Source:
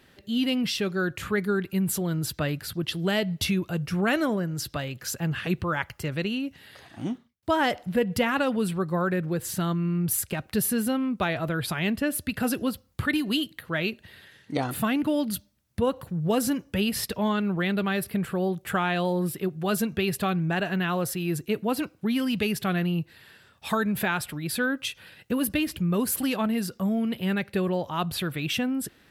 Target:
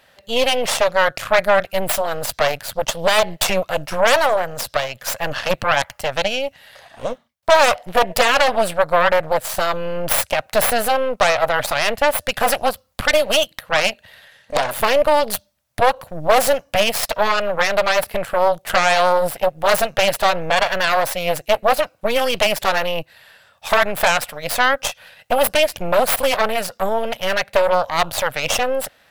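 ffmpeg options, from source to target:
ffmpeg -i in.wav -af "aeval=exprs='0.266*(cos(1*acos(clip(val(0)/0.266,-1,1)))-cos(1*PI/2))+0.133*(cos(6*acos(clip(val(0)/0.266,-1,1)))-cos(6*PI/2))':channel_layout=same,lowshelf=frequency=460:width_type=q:width=3:gain=-8,volume=4.5dB" out.wav

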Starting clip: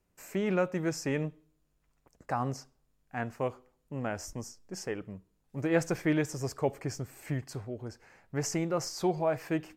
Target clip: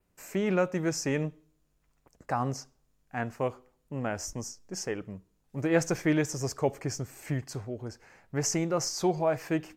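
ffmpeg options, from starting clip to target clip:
ffmpeg -i in.wav -af "adynamicequalizer=threshold=0.00178:dfrequency=6200:dqfactor=2.6:tfrequency=6200:tqfactor=2.6:attack=5:release=100:ratio=0.375:range=3:mode=boostabove:tftype=bell,volume=2dB" out.wav

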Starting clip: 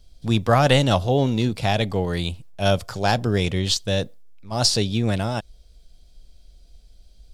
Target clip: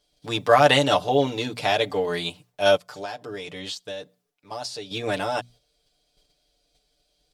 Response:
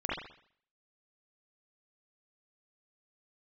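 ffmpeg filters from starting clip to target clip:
-filter_complex "[0:a]bandreject=frequency=60:width_type=h:width=6,bandreject=frequency=120:width_type=h:width=6,bandreject=frequency=180:width_type=h:width=6,bandreject=frequency=240:width_type=h:width=6,agate=range=-6dB:threshold=-43dB:ratio=16:detection=peak,highpass=frequency=130:poles=1,bass=frequency=250:gain=-12,treble=frequency=4000:gain=-3,aecho=1:1:6.8:0.86,asplit=3[link_01][link_02][link_03];[link_01]afade=type=out:start_time=2.76:duration=0.02[link_04];[link_02]acompressor=threshold=-32dB:ratio=6,afade=type=in:start_time=2.76:duration=0.02,afade=type=out:start_time=4.9:duration=0.02[link_05];[link_03]afade=type=in:start_time=4.9:duration=0.02[link_06];[link_04][link_05][link_06]amix=inputs=3:normalize=0"

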